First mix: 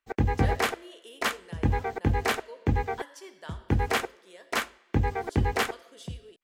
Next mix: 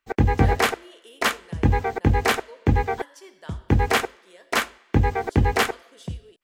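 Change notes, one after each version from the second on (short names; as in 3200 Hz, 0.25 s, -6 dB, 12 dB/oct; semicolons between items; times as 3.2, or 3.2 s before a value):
background +6.0 dB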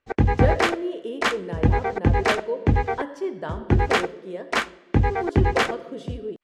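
speech: remove band-pass 6000 Hz, Q 0.59; master: add air absorption 62 m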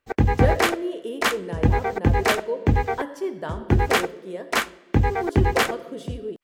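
master: remove air absorption 62 m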